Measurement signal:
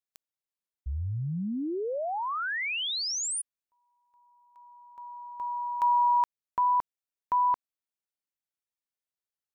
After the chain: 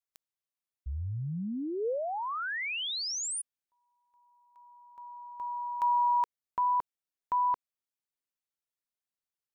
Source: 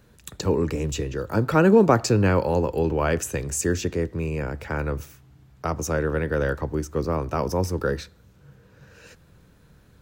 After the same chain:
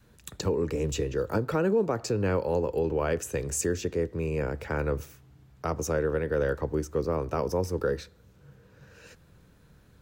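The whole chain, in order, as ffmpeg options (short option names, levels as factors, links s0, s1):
-af "adynamicequalizer=threshold=0.0178:dfrequency=460:dqfactor=2.5:tfrequency=460:tqfactor=2.5:attack=5:release=100:ratio=0.417:range=3:mode=boostabove:tftype=bell,alimiter=limit=0.2:level=0:latency=1:release=417,volume=0.708"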